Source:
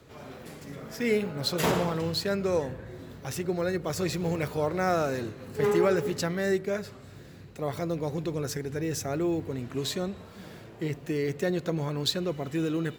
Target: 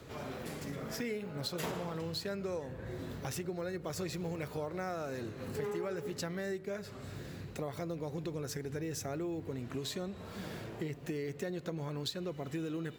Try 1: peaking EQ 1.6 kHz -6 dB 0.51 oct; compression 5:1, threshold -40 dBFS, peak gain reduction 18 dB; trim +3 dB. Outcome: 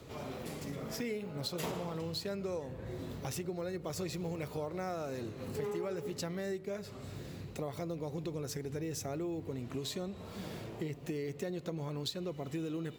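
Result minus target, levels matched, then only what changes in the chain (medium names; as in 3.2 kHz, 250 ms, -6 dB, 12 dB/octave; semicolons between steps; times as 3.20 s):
2 kHz band -3.0 dB
remove: peaking EQ 1.6 kHz -6 dB 0.51 oct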